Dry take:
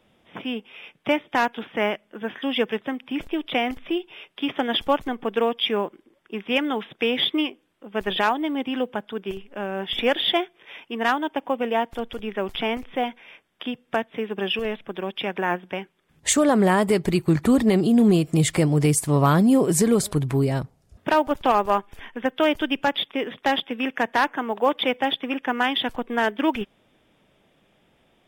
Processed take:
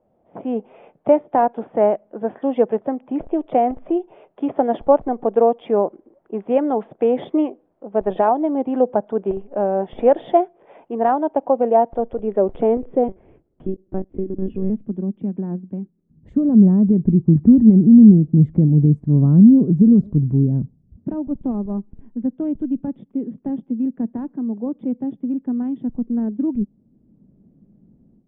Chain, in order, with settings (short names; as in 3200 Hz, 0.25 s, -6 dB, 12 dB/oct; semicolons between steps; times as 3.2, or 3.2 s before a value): AGC gain up to 14.5 dB; 13.08–14.7 monotone LPC vocoder at 8 kHz 190 Hz; low-pass sweep 670 Hz -> 220 Hz, 11.89–14.98; gain -5.5 dB